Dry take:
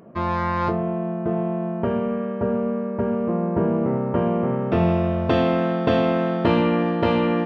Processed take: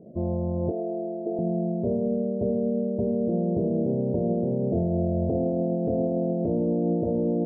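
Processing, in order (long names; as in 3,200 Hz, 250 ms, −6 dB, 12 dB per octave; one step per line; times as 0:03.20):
Butterworth low-pass 660 Hz 48 dB per octave
brickwall limiter −17.5 dBFS, peak gain reduction 10 dB
0:00.71–0:01.39: high-pass filter 290 Hz 24 dB per octave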